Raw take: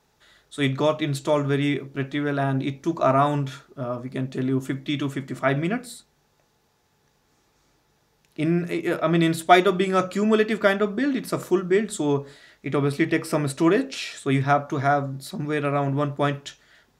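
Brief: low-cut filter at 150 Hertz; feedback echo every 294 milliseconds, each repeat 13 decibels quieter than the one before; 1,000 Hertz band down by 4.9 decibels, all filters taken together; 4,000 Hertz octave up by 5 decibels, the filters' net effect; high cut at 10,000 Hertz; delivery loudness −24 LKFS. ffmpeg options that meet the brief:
ffmpeg -i in.wav -af "highpass=150,lowpass=10000,equalizer=frequency=1000:width_type=o:gain=-8.5,equalizer=frequency=4000:width_type=o:gain=6.5,aecho=1:1:294|588|882:0.224|0.0493|0.0108,volume=1dB" out.wav

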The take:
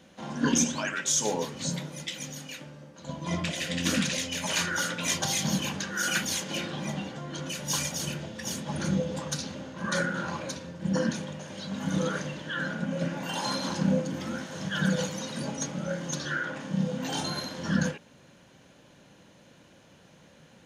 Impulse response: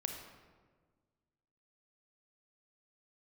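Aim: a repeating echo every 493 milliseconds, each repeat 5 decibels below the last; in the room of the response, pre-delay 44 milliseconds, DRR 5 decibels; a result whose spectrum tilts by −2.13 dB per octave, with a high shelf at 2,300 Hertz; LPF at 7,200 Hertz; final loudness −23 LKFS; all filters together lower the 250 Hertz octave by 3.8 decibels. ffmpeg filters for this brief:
-filter_complex "[0:a]lowpass=7200,equalizer=frequency=250:width_type=o:gain=-5.5,highshelf=frequency=2300:gain=6,aecho=1:1:493|986|1479|1972|2465|2958|3451:0.562|0.315|0.176|0.0988|0.0553|0.031|0.0173,asplit=2[link_01][link_02];[1:a]atrim=start_sample=2205,adelay=44[link_03];[link_02][link_03]afir=irnorm=-1:irlink=0,volume=-5.5dB[link_04];[link_01][link_04]amix=inputs=2:normalize=0,volume=3.5dB"

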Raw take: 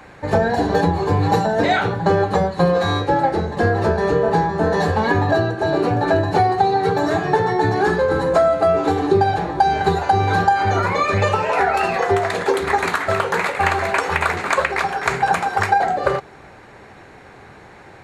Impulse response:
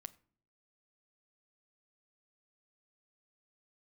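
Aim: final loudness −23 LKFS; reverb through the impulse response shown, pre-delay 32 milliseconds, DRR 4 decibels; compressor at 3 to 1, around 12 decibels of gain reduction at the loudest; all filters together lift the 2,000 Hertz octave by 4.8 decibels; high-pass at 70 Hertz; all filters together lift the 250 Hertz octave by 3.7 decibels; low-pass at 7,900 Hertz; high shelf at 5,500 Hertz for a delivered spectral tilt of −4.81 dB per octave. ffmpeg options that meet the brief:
-filter_complex "[0:a]highpass=70,lowpass=7900,equalizer=frequency=250:width_type=o:gain=5.5,equalizer=frequency=2000:width_type=o:gain=7,highshelf=frequency=5500:gain=-8.5,acompressor=threshold=-27dB:ratio=3,asplit=2[link_01][link_02];[1:a]atrim=start_sample=2205,adelay=32[link_03];[link_02][link_03]afir=irnorm=-1:irlink=0,volume=1.5dB[link_04];[link_01][link_04]amix=inputs=2:normalize=0,volume=2.5dB"

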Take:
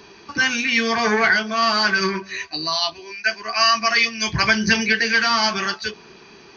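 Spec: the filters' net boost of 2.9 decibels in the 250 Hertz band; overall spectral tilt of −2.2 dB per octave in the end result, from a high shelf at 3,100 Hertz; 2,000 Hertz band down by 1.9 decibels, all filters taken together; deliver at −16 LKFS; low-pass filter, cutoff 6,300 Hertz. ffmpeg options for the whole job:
ffmpeg -i in.wav -af "lowpass=6300,equalizer=frequency=250:width_type=o:gain=3.5,equalizer=frequency=2000:width_type=o:gain=-5.5,highshelf=frequency=3100:gain=8.5,volume=1.5dB" out.wav

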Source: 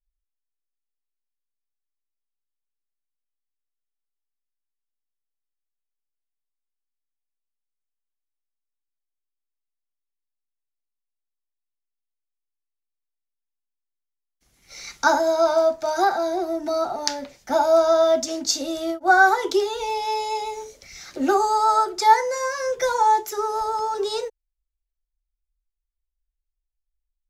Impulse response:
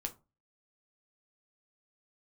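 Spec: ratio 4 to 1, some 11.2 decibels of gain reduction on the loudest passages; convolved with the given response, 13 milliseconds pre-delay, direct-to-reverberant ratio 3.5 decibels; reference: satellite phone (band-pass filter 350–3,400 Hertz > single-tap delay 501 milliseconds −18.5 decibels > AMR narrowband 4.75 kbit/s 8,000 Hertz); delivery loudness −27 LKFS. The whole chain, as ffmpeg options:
-filter_complex "[0:a]acompressor=threshold=-24dB:ratio=4,asplit=2[link_01][link_02];[1:a]atrim=start_sample=2205,adelay=13[link_03];[link_02][link_03]afir=irnorm=-1:irlink=0,volume=-2.5dB[link_04];[link_01][link_04]amix=inputs=2:normalize=0,highpass=350,lowpass=3400,aecho=1:1:501:0.119,volume=2dB" -ar 8000 -c:a libopencore_amrnb -b:a 4750

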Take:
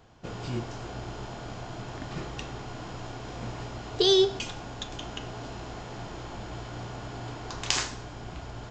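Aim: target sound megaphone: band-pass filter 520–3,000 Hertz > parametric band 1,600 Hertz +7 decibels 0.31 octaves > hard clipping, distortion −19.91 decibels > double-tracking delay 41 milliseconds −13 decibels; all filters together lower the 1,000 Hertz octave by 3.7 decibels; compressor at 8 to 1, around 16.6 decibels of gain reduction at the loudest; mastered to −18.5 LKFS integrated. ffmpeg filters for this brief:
ffmpeg -i in.wav -filter_complex "[0:a]equalizer=frequency=1000:width_type=o:gain=-5,acompressor=threshold=-35dB:ratio=8,highpass=520,lowpass=3000,equalizer=frequency=1600:width_type=o:width=0.31:gain=7,asoftclip=type=hard:threshold=-33.5dB,asplit=2[link_01][link_02];[link_02]adelay=41,volume=-13dB[link_03];[link_01][link_03]amix=inputs=2:normalize=0,volume=27dB" out.wav

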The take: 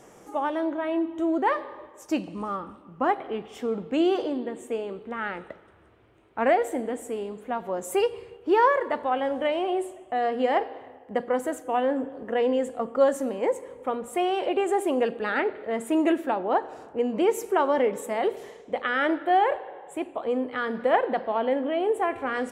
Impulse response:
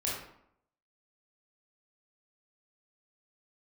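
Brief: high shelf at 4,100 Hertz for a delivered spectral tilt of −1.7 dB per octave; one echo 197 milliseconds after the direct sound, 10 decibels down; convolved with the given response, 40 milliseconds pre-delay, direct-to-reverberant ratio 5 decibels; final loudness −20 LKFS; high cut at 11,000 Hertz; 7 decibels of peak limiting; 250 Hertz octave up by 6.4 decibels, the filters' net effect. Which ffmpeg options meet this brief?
-filter_complex "[0:a]lowpass=11000,equalizer=frequency=250:width_type=o:gain=8.5,highshelf=frequency=4100:gain=-5.5,alimiter=limit=-16dB:level=0:latency=1,aecho=1:1:197:0.316,asplit=2[link_01][link_02];[1:a]atrim=start_sample=2205,adelay=40[link_03];[link_02][link_03]afir=irnorm=-1:irlink=0,volume=-10dB[link_04];[link_01][link_04]amix=inputs=2:normalize=0,volume=4dB"

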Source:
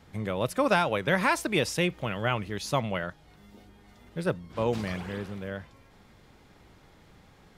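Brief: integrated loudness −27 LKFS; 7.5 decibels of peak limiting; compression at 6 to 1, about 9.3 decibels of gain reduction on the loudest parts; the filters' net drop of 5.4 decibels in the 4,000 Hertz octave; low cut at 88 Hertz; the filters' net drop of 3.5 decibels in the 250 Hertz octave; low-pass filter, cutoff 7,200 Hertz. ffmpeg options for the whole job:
ffmpeg -i in.wav -af "highpass=88,lowpass=7200,equalizer=frequency=250:width_type=o:gain=-5,equalizer=frequency=4000:width_type=o:gain=-7,acompressor=threshold=-30dB:ratio=6,volume=11.5dB,alimiter=limit=-14dB:level=0:latency=1" out.wav

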